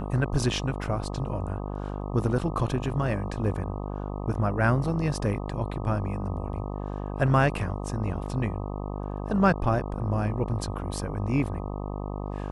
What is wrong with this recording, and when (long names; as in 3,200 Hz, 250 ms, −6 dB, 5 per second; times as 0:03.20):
mains buzz 50 Hz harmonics 25 −33 dBFS